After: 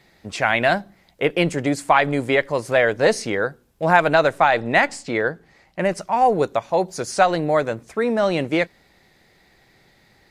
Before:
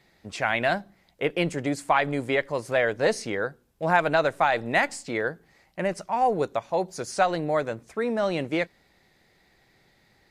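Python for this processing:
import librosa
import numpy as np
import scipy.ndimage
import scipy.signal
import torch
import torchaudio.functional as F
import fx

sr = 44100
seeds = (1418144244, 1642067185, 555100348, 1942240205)

y = fx.high_shelf(x, sr, hz=10000.0, db=-12.0, at=(4.38, 5.81))
y = y * librosa.db_to_amplitude(6.0)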